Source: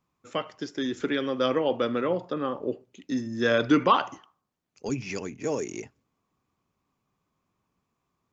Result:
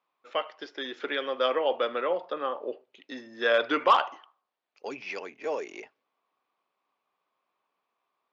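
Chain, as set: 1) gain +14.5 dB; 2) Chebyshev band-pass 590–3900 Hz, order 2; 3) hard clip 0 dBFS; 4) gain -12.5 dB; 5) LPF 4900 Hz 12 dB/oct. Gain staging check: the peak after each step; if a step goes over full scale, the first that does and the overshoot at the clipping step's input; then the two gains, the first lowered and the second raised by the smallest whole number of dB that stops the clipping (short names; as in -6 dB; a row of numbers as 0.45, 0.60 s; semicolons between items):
+5.5, +5.5, 0.0, -12.5, -12.0 dBFS; step 1, 5.5 dB; step 1 +8.5 dB, step 4 -6.5 dB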